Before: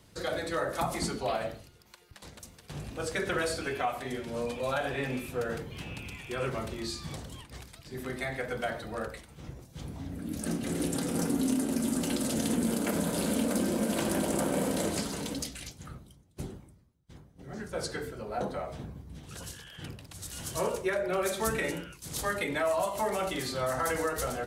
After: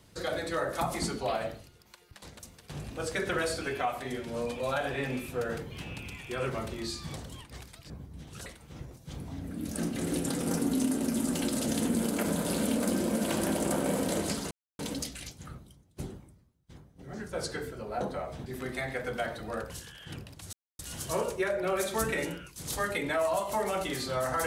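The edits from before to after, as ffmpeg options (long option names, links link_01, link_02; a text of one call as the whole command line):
ffmpeg -i in.wav -filter_complex "[0:a]asplit=7[link_01][link_02][link_03][link_04][link_05][link_06][link_07];[link_01]atrim=end=7.902[link_08];[link_02]atrim=start=18.858:end=19.422[link_09];[link_03]atrim=start=9.138:end=15.19,asetpts=PTS-STARTPTS,afade=type=out:start_time=6.048:duration=0.004:curve=hsin,apad=pad_dur=0.28[link_10];[link_04]atrim=start=15.19:end=18.862,asetpts=PTS-STARTPTS,afade=type=in:duration=0.004:curve=hsin[link_11];[link_05]atrim=start=7.898:end=9.142[link_12];[link_06]atrim=start=19.418:end=20.25,asetpts=PTS-STARTPTS,afade=type=out:start_time=0.828:duration=0.004:curve=hsin,apad=pad_dur=0.26[link_13];[link_07]atrim=start=20.25,asetpts=PTS-STARTPTS,afade=type=in:duration=0.004:curve=hsin[link_14];[link_08][link_09]acrossfade=duration=0.004:curve1=hsin:curve2=hsin[link_15];[link_10][link_11]concat=n=2:v=0:a=1[link_16];[link_15][link_16]acrossfade=duration=0.004:curve1=hsin:curve2=hsin[link_17];[link_17][link_12]acrossfade=duration=0.004:curve1=hsin:curve2=hsin[link_18];[link_13][link_14]concat=n=2:v=0:a=1[link_19];[link_18][link_19]acrossfade=duration=0.004:curve1=hsin:curve2=hsin" out.wav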